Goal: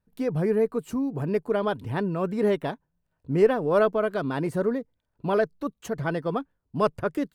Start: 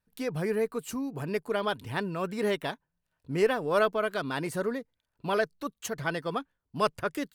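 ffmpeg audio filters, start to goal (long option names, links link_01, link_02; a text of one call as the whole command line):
ffmpeg -i in.wav -af "tiltshelf=frequency=1300:gain=7" out.wav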